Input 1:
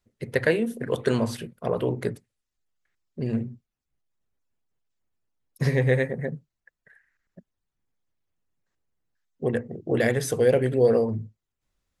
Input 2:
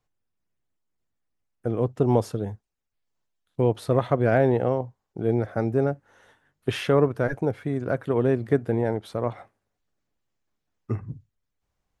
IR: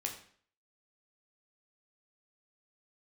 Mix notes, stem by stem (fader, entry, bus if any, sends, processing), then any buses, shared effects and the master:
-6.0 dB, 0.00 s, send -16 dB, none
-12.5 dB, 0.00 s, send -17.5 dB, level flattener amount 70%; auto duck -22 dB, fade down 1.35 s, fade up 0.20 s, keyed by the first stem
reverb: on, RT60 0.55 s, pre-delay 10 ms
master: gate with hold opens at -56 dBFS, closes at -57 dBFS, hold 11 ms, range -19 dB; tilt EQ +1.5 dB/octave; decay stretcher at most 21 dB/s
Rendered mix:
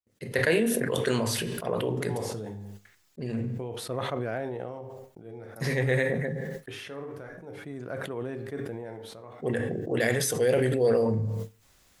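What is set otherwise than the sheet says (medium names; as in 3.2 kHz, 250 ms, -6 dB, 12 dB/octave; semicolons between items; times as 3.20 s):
stem 2: missing level flattener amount 70%; reverb return +9.5 dB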